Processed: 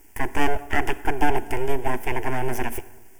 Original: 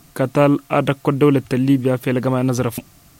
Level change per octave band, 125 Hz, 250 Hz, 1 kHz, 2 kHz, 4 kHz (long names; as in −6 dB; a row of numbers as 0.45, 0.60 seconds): −14.0, −14.0, −1.5, +1.0, −4.5 decibels